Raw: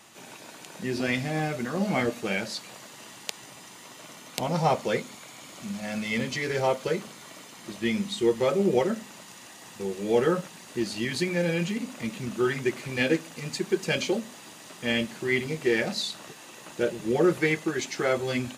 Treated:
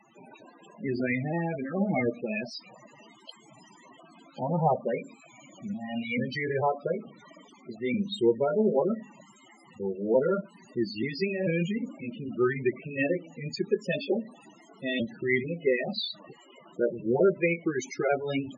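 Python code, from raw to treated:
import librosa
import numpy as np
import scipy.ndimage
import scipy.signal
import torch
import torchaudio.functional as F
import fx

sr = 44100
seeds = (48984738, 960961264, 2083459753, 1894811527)

y = fx.pitch_trill(x, sr, semitones=1.5, every_ms=441)
y = fx.spec_topn(y, sr, count=16)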